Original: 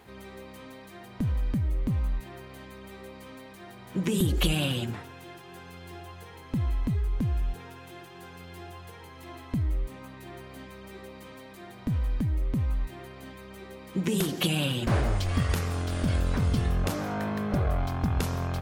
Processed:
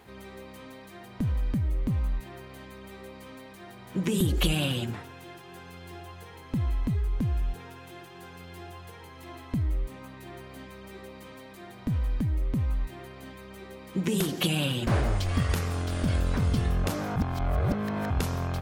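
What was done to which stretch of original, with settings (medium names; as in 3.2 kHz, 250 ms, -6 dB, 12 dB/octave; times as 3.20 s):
17.16–18.10 s: reverse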